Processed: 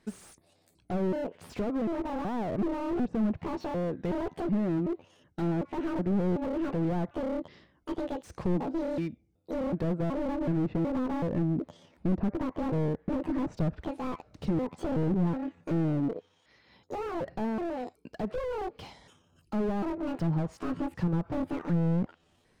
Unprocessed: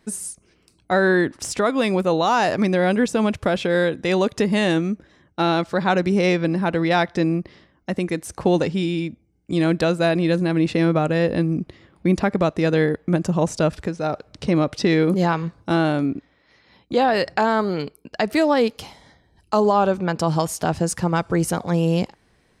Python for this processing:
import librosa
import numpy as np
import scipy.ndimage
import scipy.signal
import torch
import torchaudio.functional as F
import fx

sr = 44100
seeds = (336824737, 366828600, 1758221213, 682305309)

y = fx.pitch_trill(x, sr, semitones=9.0, every_ms=374)
y = fx.env_lowpass_down(y, sr, base_hz=800.0, full_db=-15.5)
y = fx.slew_limit(y, sr, full_power_hz=30.0)
y = y * librosa.db_to_amplitude(-6.0)